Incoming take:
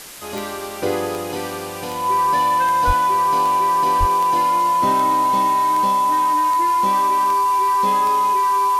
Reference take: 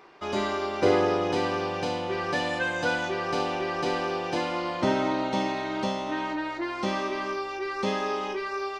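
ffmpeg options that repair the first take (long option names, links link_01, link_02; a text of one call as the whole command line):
ffmpeg -i in.wav -filter_complex "[0:a]adeclick=threshold=4,bandreject=frequency=1000:width=30,asplit=3[link_01][link_02][link_03];[link_01]afade=type=out:start_time=2.86:duration=0.02[link_04];[link_02]highpass=frequency=140:width=0.5412,highpass=frequency=140:width=1.3066,afade=type=in:start_time=2.86:duration=0.02,afade=type=out:start_time=2.98:duration=0.02[link_05];[link_03]afade=type=in:start_time=2.98:duration=0.02[link_06];[link_04][link_05][link_06]amix=inputs=3:normalize=0,asplit=3[link_07][link_08][link_09];[link_07]afade=type=out:start_time=3.99:duration=0.02[link_10];[link_08]highpass=frequency=140:width=0.5412,highpass=frequency=140:width=1.3066,afade=type=in:start_time=3.99:duration=0.02,afade=type=out:start_time=4.11:duration=0.02[link_11];[link_09]afade=type=in:start_time=4.11:duration=0.02[link_12];[link_10][link_11][link_12]amix=inputs=3:normalize=0,afwtdn=0.016" out.wav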